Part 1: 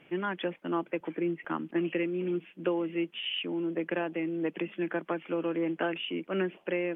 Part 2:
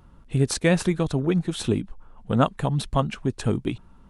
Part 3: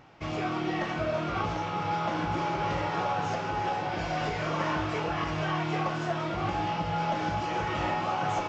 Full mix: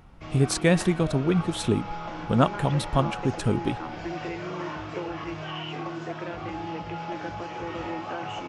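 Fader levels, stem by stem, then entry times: -6.0, -0.5, -6.0 dB; 2.30, 0.00, 0.00 s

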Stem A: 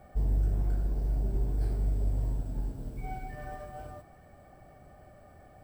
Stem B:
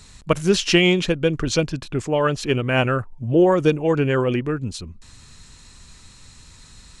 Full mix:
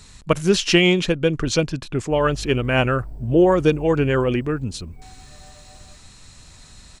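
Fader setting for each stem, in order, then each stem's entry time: -7.5, +0.5 dB; 1.95, 0.00 s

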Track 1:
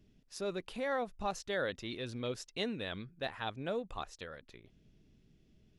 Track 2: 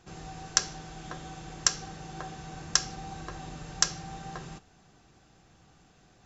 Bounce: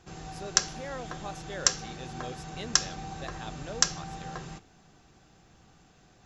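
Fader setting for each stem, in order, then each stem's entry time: -4.5, +1.0 dB; 0.00, 0.00 s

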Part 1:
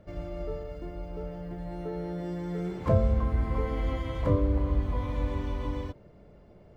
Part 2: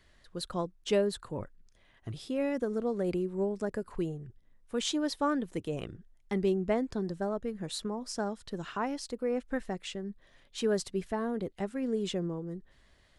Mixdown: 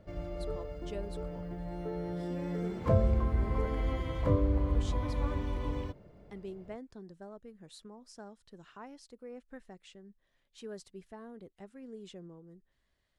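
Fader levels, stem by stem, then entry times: -2.5, -15.0 dB; 0.00, 0.00 s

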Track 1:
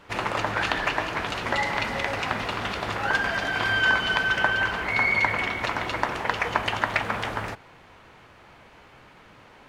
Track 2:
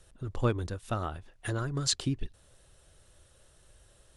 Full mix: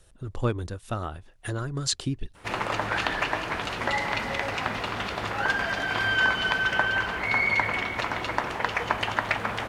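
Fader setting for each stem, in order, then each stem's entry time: -1.5, +1.5 dB; 2.35, 0.00 s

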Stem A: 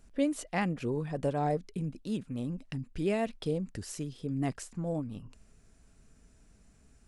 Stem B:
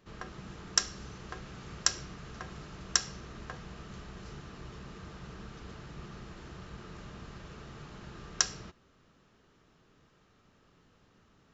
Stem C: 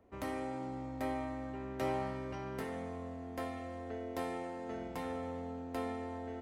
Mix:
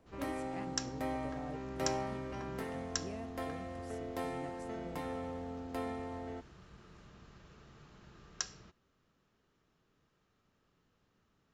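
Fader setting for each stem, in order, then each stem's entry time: -17.5, -10.5, -0.5 dB; 0.00, 0.00, 0.00 s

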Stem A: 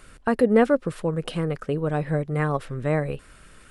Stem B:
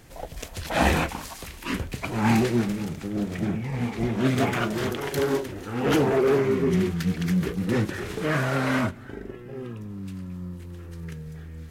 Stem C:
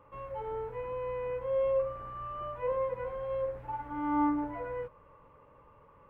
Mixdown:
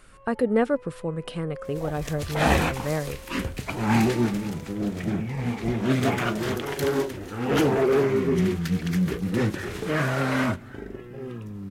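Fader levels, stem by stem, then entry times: -4.0, 0.0, -11.0 dB; 0.00, 1.65, 0.00 s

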